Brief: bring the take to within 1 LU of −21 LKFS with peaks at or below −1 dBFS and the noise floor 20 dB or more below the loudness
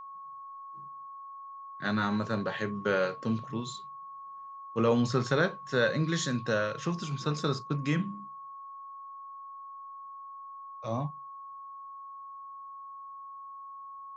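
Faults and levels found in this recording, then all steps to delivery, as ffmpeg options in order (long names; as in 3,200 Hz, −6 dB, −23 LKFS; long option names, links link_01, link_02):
interfering tone 1,100 Hz; level of the tone −42 dBFS; integrated loudness −31.0 LKFS; sample peak −13.0 dBFS; target loudness −21.0 LKFS
→ -af "bandreject=frequency=1100:width=30"
-af "volume=10dB"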